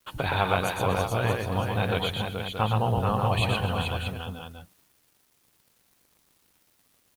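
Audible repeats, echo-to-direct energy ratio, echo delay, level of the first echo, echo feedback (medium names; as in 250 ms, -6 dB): 5, -0.5 dB, 118 ms, -3.5 dB, no regular repeats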